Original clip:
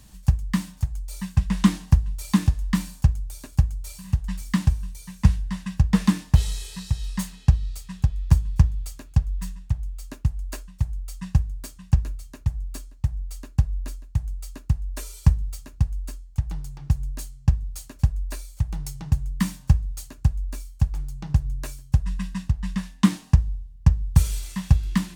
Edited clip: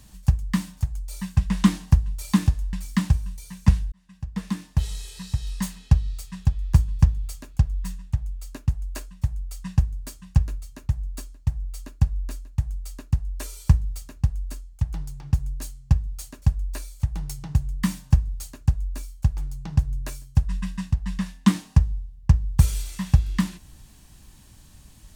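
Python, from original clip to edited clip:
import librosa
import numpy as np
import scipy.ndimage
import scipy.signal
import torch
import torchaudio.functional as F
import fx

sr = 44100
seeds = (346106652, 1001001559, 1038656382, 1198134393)

y = fx.edit(x, sr, fx.cut(start_s=2.73, length_s=1.57),
    fx.fade_in_span(start_s=5.49, length_s=1.65), tone=tone)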